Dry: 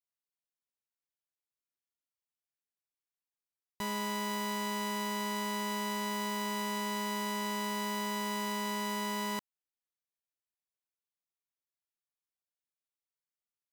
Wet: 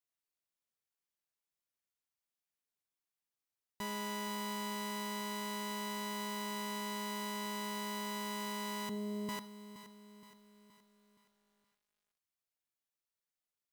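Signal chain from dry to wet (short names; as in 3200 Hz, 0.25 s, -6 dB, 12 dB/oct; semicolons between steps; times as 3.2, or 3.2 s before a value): 8.89–9.29 steep low-pass 610 Hz 96 dB/oct; limiter -32 dBFS, peak gain reduction 4.5 dB; reverb, pre-delay 3 ms, DRR 14.5 dB; lo-fi delay 0.471 s, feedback 55%, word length 11-bit, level -13 dB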